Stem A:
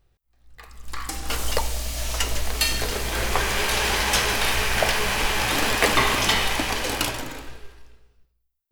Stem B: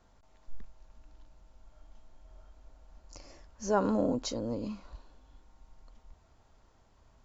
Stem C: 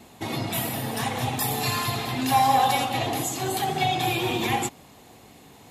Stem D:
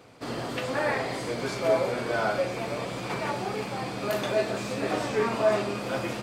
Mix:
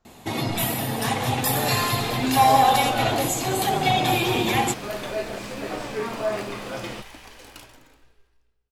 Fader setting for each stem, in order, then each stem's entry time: -19.5 dB, -5.0 dB, +3.0 dB, -3.0 dB; 0.55 s, 0.00 s, 0.05 s, 0.80 s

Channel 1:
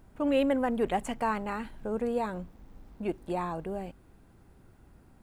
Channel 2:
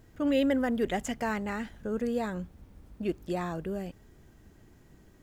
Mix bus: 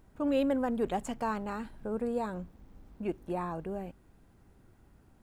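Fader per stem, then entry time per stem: -4.0 dB, -14.0 dB; 0.00 s, 0.00 s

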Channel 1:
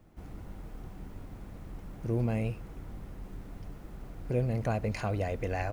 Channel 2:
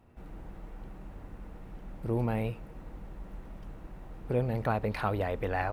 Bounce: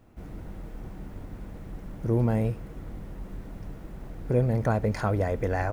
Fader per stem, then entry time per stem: +1.0 dB, -1.0 dB; 0.00 s, 0.00 s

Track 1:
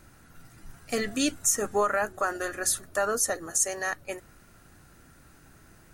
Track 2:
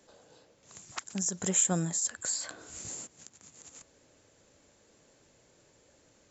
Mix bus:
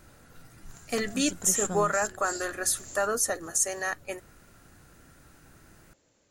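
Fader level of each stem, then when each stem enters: -0.5 dB, -4.5 dB; 0.00 s, 0.00 s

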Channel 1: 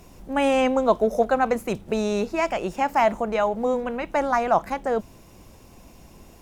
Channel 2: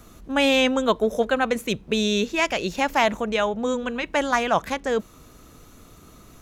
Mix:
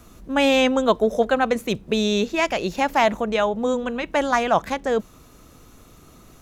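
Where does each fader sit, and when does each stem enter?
-8.0 dB, -1.0 dB; 0.00 s, 0.00 s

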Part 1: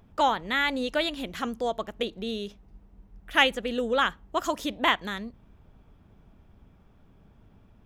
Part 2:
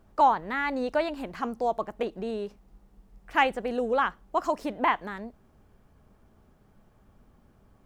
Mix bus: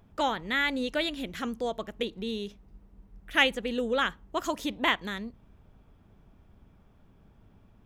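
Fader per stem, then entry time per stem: -2.0 dB, -12.5 dB; 0.00 s, 0.00 s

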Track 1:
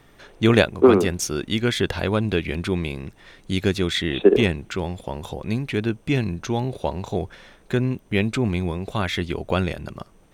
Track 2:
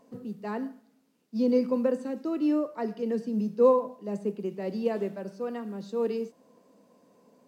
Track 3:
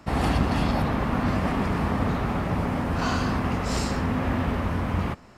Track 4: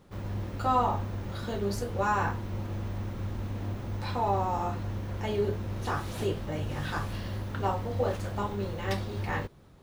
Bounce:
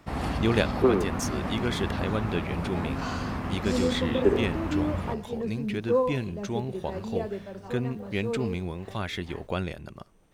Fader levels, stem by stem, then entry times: -8.0 dB, -3.5 dB, -6.5 dB, -17.0 dB; 0.00 s, 2.30 s, 0.00 s, 0.00 s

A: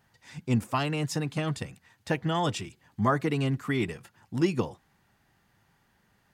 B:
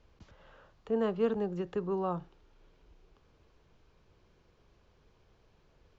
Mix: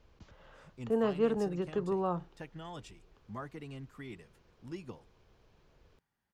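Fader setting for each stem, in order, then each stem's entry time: -18.0 dB, +0.5 dB; 0.30 s, 0.00 s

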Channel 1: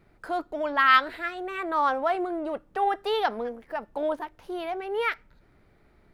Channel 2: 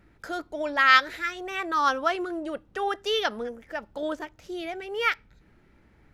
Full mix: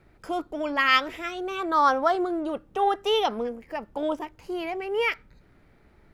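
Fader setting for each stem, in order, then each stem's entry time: +0.5 dB, -4.0 dB; 0.00 s, 0.00 s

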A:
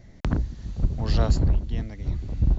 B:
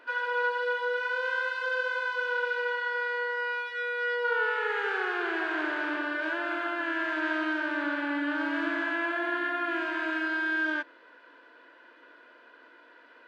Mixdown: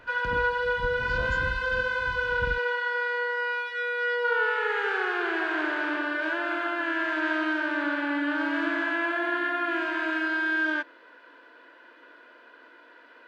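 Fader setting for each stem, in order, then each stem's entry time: -13.5 dB, +2.5 dB; 0.00 s, 0.00 s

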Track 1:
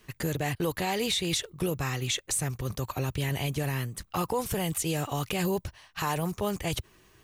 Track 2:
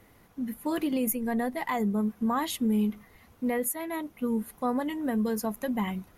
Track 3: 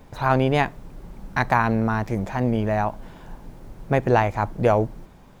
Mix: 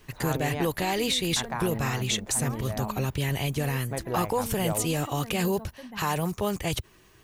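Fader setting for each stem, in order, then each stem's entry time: +2.0 dB, -13.5 dB, -13.5 dB; 0.00 s, 0.15 s, 0.00 s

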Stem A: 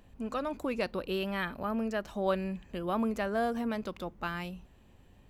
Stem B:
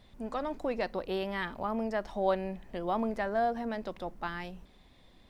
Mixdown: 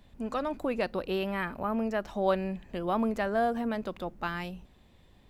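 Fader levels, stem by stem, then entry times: -2.0 dB, -5.0 dB; 0.00 s, 0.00 s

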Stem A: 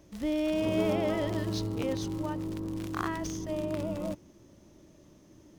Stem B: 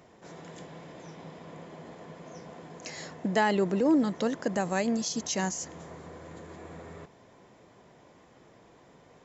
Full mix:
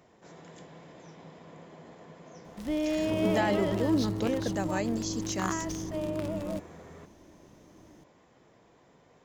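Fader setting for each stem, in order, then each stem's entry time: 0.0 dB, -4.0 dB; 2.45 s, 0.00 s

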